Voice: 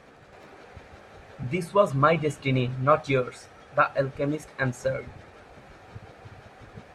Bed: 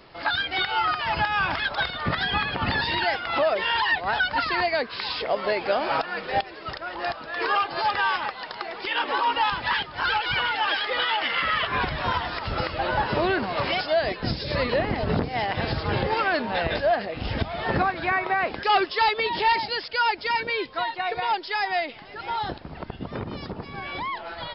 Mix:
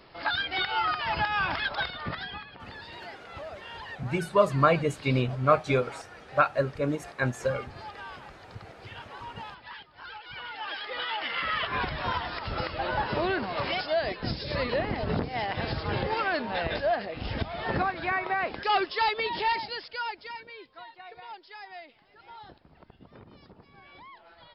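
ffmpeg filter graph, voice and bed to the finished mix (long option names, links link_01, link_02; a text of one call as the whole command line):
ffmpeg -i stem1.wav -i stem2.wav -filter_complex "[0:a]adelay=2600,volume=-1dB[link_01];[1:a]volume=11dB,afade=type=out:start_time=1.7:duration=0.75:silence=0.16788,afade=type=in:start_time=10.24:duration=1.41:silence=0.188365,afade=type=out:start_time=19.3:duration=1.16:silence=0.199526[link_02];[link_01][link_02]amix=inputs=2:normalize=0" out.wav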